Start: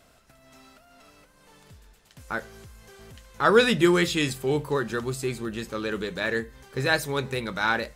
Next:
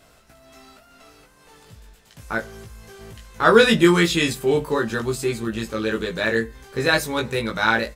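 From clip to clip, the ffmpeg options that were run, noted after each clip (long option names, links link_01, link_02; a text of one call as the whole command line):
ffmpeg -i in.wav -filter_complex "[0:a]asplit=2[link_01][link_02];[link_02]adelay=18,volume=-2.5dB[link_03];[link_01][link_03]amix=inputs=2:normalize=0,volume=3dB" out.wav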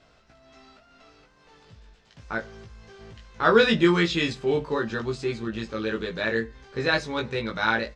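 ffmpeg -i in.wav -af "lowpass=frequency=5700:width=0.5412,lowpass=frequency=5700:width=1.3066,volume=-4.5dB" out.wav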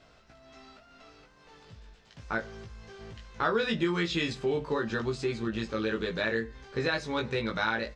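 ffmpeg -i in.wav -af "acompressor=threshold=-26dB:ratio=4" out.wav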